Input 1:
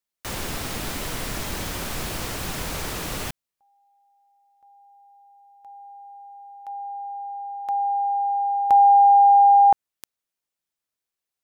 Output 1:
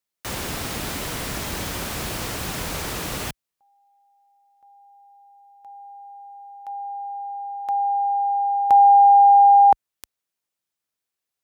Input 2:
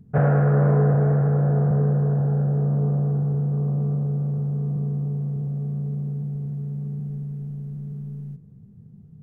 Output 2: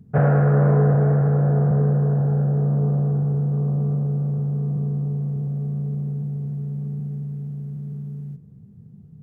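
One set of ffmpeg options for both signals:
-af "highpass=41,volume=1.19"

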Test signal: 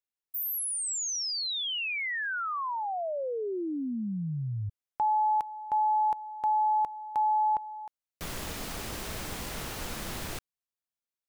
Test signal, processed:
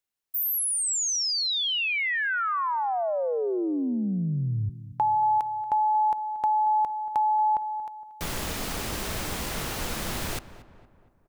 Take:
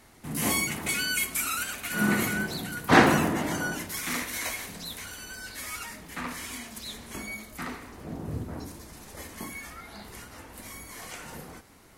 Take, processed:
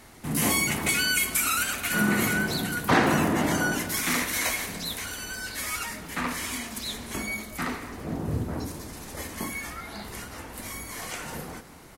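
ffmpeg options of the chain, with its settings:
-filter_complex "[0:a]acompressor=threshold=0.0355:ratio=2.5:attack=24:release=159:knee=1:detection=peak,asplit=2[s0][s1];[s1]adelay=232,lowpass=f=2000:p=1,volume=0.178,asplit=2[s2][s3];[s3]adelay=232,lowpass=f=2000:p=1,volume=0.52,asplit=2[s4][s5];[s5]adelay=232,lowpass=f=2000:p=1,volume=0.52,asplit=2[s6][s7];[s7]adelay=232,lowpass=f=2000:p=1,volume=0.52,asplit=2[s8][s9];[s9]adelay=232,lowpass=f=2000:p=1,volume=0.52[s10];[s0][s2][s4][s6][s8][s10]amix=inputs=6:normalize=0,volume=1.88"

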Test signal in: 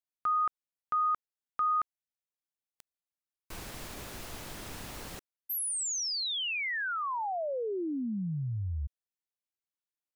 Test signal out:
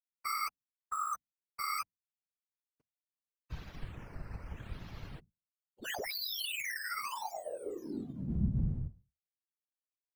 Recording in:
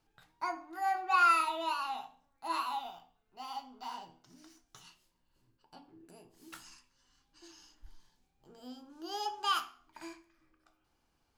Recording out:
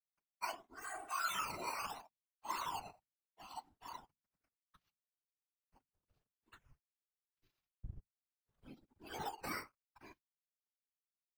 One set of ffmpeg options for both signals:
-filter_complex "[0:a]equalizer=f=550:w=0.76:g=-2.5,aresample=16000,aeval=exprs='sgn(val(0))*max(abs(val(0))-0.002,0)':c=same,aresample=44100,alimiter=level_in=1.68:limit=0.0631:level=0:latency=1:release=22,volume=0.596,bandreject=f=60:t=h:w=6,bandreject=f=120:t=h:w=6,bandreject=f=180:t=h:w=6,bandreject=f=240:t=h:w=6,acrossover=split=310[s0][s1];[s0]asubboost=boost=3.5:cutoff=150[s2];[s1]acrusher=samples=9:mix=1:aa=0.000001:lfo=1:lforange=9:lforate=0.76[s3];[s2][s3]amix=inputs=2:normalize=0,afftdn=nr=13:nf=-54,bandreject=f=780:w=14,aecho=1:1:7.1:0.55,afftfilt=real='hypot(re,im)*cos(2*PI*random(0))':imag='hypot(re,im)*sin(2*PI*random(1))':win_size=512:overlap=0.75,volume=1.12"

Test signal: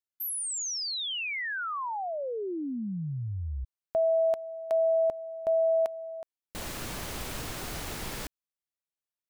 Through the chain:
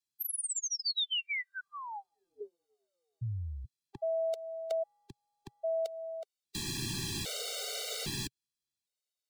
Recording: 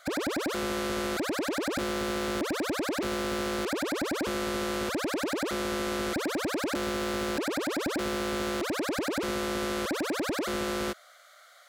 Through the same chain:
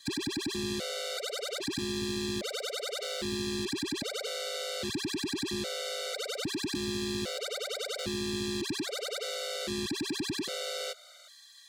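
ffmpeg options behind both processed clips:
-filter_complex "[0:a]equalizer=f=125:t=o:w=1:g=8,equalizer=f=500:t=o:w=1:g=4,equalizer=f=1000:t=o:w=1:g=-10,equalizer=f=4000:t=o:w=1:g=11,equalizer=f=8000:t=o:w=1:g=6,acrossover=split=99|250|550|2400[s0][s1][s2][s3][s4];[s0]acompressor=threshold=0.00316:ratio=4[s5];[s1]acompressor=threshold=0.0158:ratio=4[s6];[s2]acompressor=threshold=0.0141:ratio=4[s7];[s3]acompressor=threshold=0.0126:ratio=4[s8];[s4]acompressor=threshold=0.0224:ratio=4[s9];[s5][s6][s7][s8][s9]amix=inputs=5:normalize=0,afftfilt=real='re*gt(sin(2*PI*0.62*pts/sr)*(1-2*mod(floor(b*sr/1024/390),2)),0)':imag='im*gt(sin(2*PI*0.62*pts/sr)*(1-2*mod(floor(b*sr/1024/390),2)),0)':win_size=1024:overlap=0.75"

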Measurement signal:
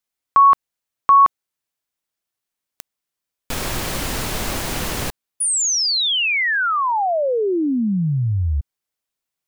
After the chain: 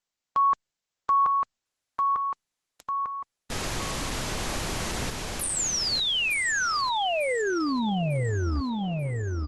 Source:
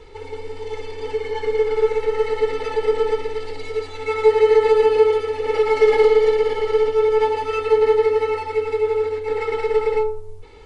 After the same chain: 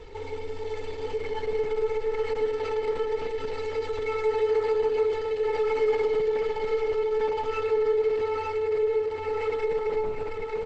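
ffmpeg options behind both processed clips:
-af "aecho=1:1:898|1796|2694|3592:0.501|0.185|0.0686|0.0254,acompressor=threshold=0.0398:ratio=2:attack=0.21:release=41:detection=rms" -ar 48000 -c:a libopus -b:a 12k

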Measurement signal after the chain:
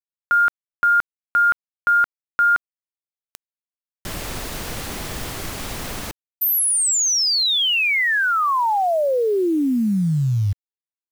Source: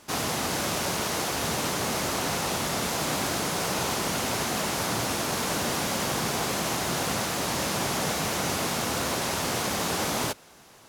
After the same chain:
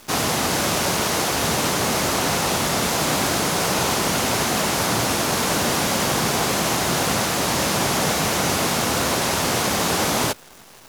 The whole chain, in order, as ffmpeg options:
-af "acrusher=bits=9:dc=4:mix=0:aa=0.000001,volume=2.24"

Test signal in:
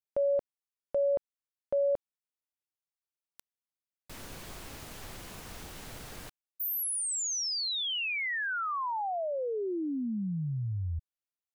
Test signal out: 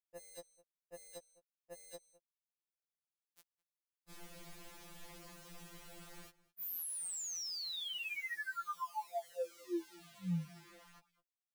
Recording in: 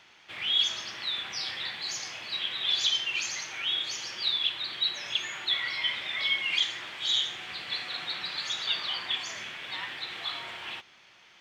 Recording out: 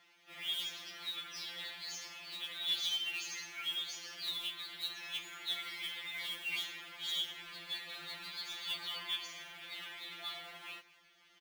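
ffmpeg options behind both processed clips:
-filter_complex "[0:a]asplit=2[s0][s1];[s1]adelay=209.9,volume=0.1,highshelf=f=4000:g=-4.72[s2];[s0][s2]amix=inputs=2:normalize=0,acrusher=bits=3:mode=log:mix=0:aa=0.000001,afftfilt=real='re*2.83*eq(mod(b,8),0)':imag='im*2.83*eq(mod(b,8),0)':win_size=2048:overlap=0.75,volume=0.422"

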